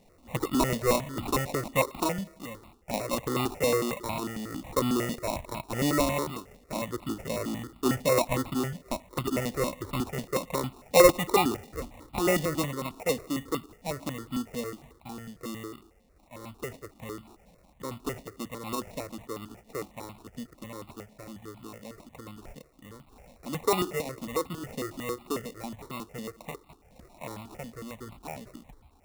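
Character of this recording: aliases and images of a low sample rate 1600 Hz, jitter 0%; notches that jump at a steady rate 11 Hz 350–1700 Hz

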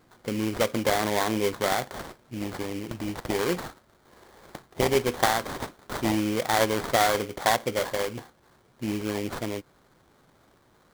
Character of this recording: aliases and images of a low sample rate 2700 Hz, jitter 20%

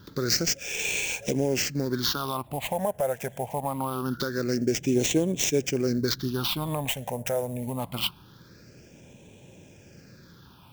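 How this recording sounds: aliases and images of a low sample rate 11000 Hz, jitter 20%; phasing stages 6, 0.24 Hz, lowest notch 310–1300 Hz

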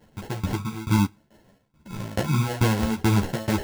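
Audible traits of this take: phasing stages 12, 0.97 Hz, lowest notch 580–1400 Hz; aliases and images of a low sample rate 1200 Hz, jitter 0%; tremolo saw down 2.3 Hz, depth 95%; a shimmering, thickened sound

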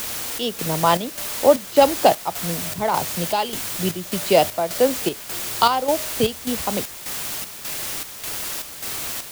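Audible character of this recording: a quantiser's noise floor 6-bit, dither triangular; chopped level 1.7 Hz, depth 60%, duty 65%

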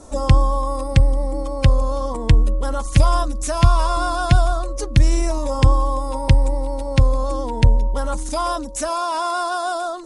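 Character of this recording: noise floor -27 dBFS; spectral tilt -6.0 dB/oct

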